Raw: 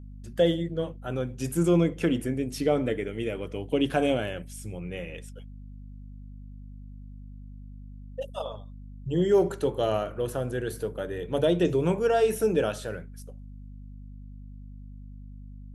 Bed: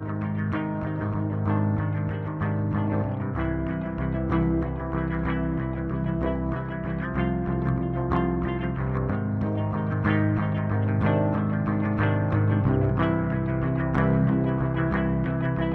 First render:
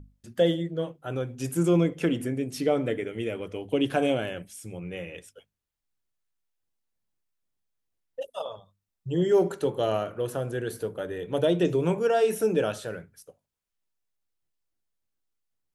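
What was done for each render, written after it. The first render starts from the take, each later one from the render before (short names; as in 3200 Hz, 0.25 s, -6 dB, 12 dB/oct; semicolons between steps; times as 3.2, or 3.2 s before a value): notches 50/100/150/200/250 Hz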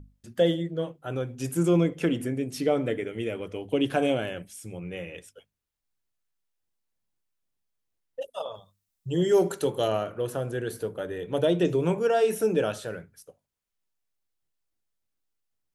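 8.54–9.88 high shelf 3700 Hz +9.5 dB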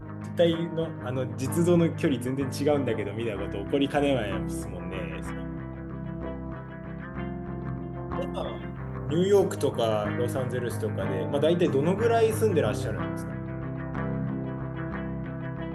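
add bed -8.5 dB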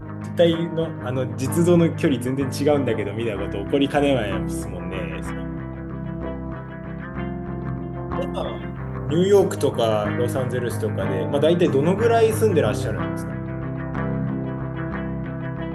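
gain +5.5 dB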